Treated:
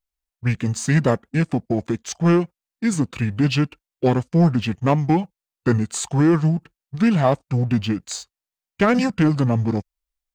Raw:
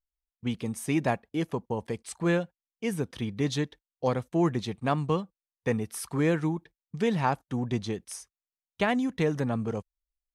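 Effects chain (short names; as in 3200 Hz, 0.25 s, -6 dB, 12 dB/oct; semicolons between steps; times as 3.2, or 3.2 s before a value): formant shift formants -5 st; sample leveller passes 1; gain +6.5 dB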